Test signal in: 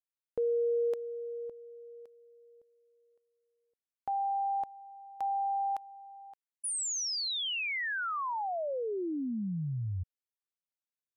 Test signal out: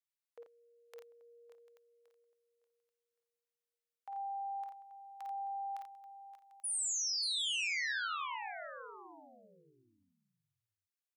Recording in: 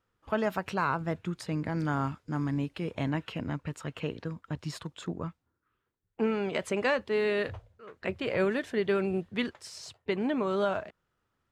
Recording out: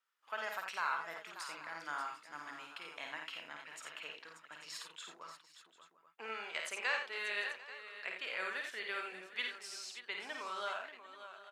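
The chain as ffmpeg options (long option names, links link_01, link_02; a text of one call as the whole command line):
ffmpeg -i in.wav -filter_complex "[0:a]highpass=1300,asplit=2[link_01][link_02];[link_02]aecho=0:1:48|54|86|585|745|834:0.266|0.531|0.422|0.266|0.112|0.158[link_03];[link_01][link_03]amix=inputs=2:normalize=0,volume=-3.5dB" out.wav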